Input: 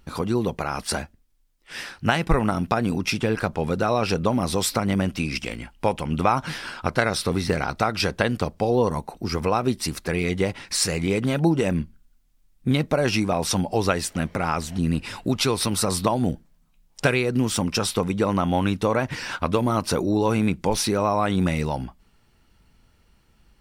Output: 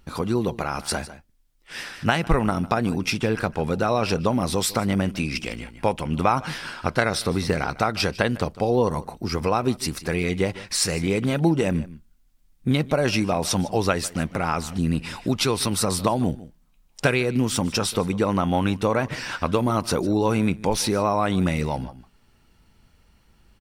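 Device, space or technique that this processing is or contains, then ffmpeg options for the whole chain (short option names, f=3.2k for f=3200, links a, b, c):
ducked delay: -filter_complex "[0:a]asplit=3[a][b][c];[b]adelay=152,volume=-4.5dB[d];[c]apad=whole_len=1047516[e];[d][e]sidechaincompress=threshold=-35dB:ratio=6:attack=16:release=560[f];[a][f]amix=inputs=2:normalize=0"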